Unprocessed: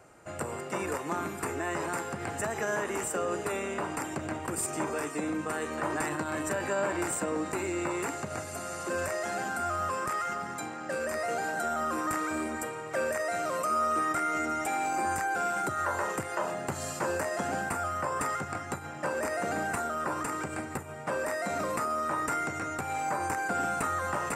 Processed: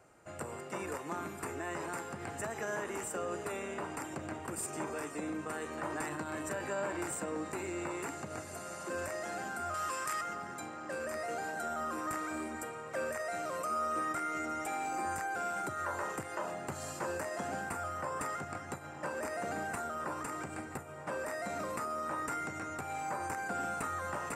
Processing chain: 9.74–10.21 tilt shelf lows -9 dB; darkening echo 0.982 s, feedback 82%, low-pass 2000 Hz, level -17 dB; gain -6.5 dB

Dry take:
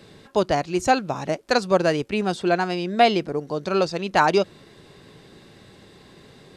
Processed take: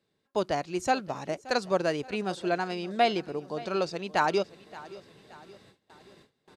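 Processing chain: low shelf 110 Hz -7.5 dB; on a send: feedback echo 0.574 s, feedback 47%, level -19 dB; on the sum: gate with hold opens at -38 dBFS; gain -7 dB

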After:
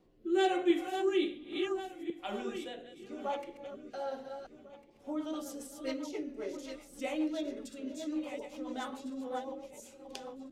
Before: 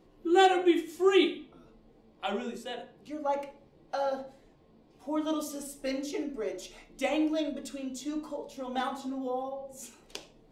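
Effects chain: regenerating reverse delay 0.7 s, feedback 42%, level -7 dB; rotary speaker horn 1.1 Hz, later 7.5 Hz, at 4.11; gain -4 dB

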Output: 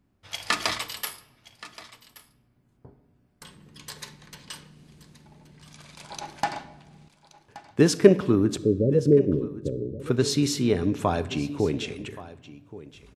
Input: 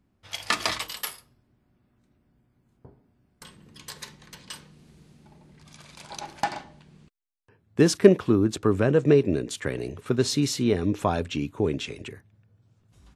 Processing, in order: 8.58–10 steep low-pass 570 Hz 96 dB/oct; echo 1.125 s -17.5 dB; reverb RT60 1.3 s, pre-delay 7 ms, DRR 14.5 dB

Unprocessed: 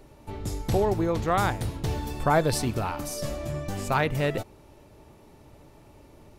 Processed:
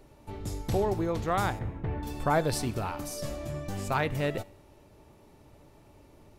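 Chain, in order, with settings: 1.59–2.03 Chebyshev low-pass 2100 Hz, order 3; resonator 97 Hz, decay 0.73 s, harmonics all, mix 40%

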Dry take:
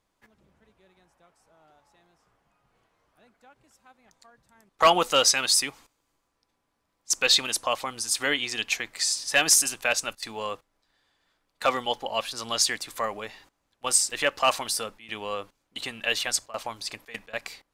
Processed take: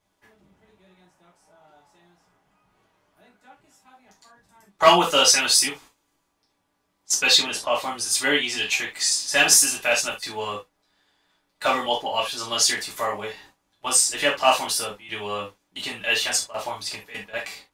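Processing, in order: 7.34–7.75 LPF 3700 Hz 6 dB/oct; non-linear reverb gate 0.1 s falling, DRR -5.5 dB; gain -2.5 dB

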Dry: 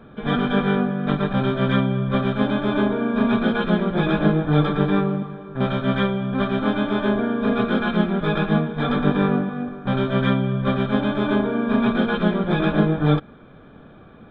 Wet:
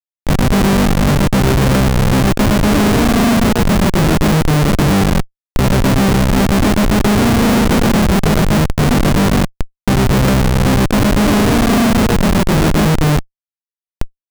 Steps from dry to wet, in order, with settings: high shelf 2600 Hz -3.5 dB; analogue delay 0.461 s, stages 4096, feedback 57%, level -15.5 dB; AGC gain up to 13.5 dB; Schmitt trigger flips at -14.5 dBFS; gain +4 dB

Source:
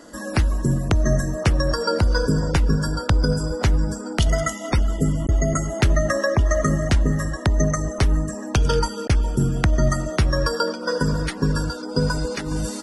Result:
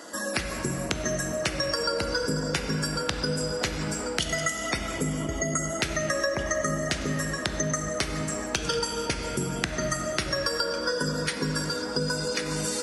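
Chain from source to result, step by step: HPF 700 Hz 6 dB/oct; on a send at -5 dB: reverb RT60 2.5 s, pre-delay 3 ms; on the sum: dynamic EQ 940 Hz, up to -8 dB, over -42 dBFS, Q 1.2; compressor 3:1, threshold -30 dBFS, peak gain reduction 7.5 dB; gain +5 dB

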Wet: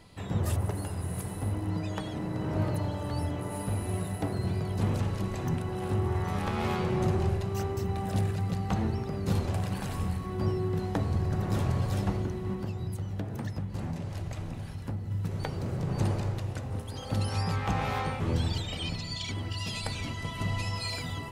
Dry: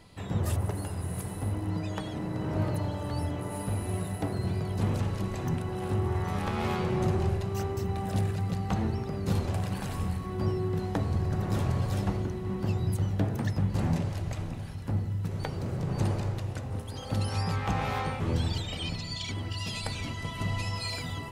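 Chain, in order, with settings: 12.53–15.11 compressor, threshold -31 dBFS, peak gain reduction 9 dB

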